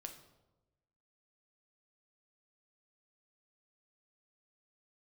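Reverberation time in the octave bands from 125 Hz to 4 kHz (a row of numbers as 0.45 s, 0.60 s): 1.4 s, 1.2 s, 1.2 s, 0.95 s, 0.70 s, 0.65 s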